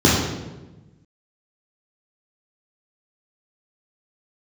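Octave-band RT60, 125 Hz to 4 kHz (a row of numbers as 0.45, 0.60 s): 1.7, 1.5, 1.2, 1.0, 0.90, 0.80 s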